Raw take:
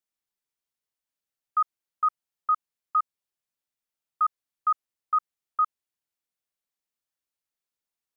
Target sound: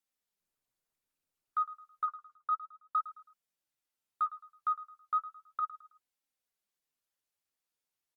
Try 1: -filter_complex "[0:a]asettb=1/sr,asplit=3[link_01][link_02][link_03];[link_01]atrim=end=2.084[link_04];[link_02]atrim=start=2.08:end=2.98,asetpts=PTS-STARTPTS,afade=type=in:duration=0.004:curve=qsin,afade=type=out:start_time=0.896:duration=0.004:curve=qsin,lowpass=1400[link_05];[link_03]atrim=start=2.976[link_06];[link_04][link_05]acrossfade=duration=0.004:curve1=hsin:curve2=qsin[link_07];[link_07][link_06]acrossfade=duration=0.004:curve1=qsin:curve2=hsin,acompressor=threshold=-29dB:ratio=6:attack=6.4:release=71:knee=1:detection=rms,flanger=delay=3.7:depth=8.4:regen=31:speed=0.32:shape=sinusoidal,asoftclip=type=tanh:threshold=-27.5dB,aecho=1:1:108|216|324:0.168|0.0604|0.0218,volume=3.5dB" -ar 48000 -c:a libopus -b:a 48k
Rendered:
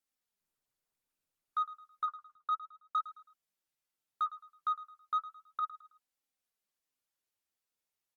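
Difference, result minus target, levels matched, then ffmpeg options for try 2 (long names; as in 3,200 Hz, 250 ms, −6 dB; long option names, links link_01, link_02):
soft clipping: distortion +19 dB
-filter_complex "[0:a]asettb=1/sr,asplit=3[link_01][link_02][link_03];[link_01]atrim=end=2.084[link_04];[link_02]atrim=start=2.08:end=2.98,asetpts=PTS-STARTPTS,afade=type=in:duration=0.004:curve=qsin,afade=type=out:start_time=0.896:duration=0.004:curve=qsin,lowpass=1400[link_05];[link_03]atrim=start=2.976[link_06];[link_04][link_05]acrossfade=duration=0.004:curve1=hsin:curve2=qsin[link_07];[link_07][link_06]acrossfade=duration=0.004:curve1=qsin:curve2=hsin,acompressor=threshold=-29dB:ratio=6:attack=6.4:release=71:knee=1:detection=rms,flanger=delay=3.7:depth=8.4:regen=31:speed=0.32:shape=sinusoidal,asoftclip=type=tanh:threshold=-17dB,aecho=1:1:108|216|324:0.168|0.0604|0.0218,volume=3.5dB" -ar 48000 -c:a libopus -b:a 48k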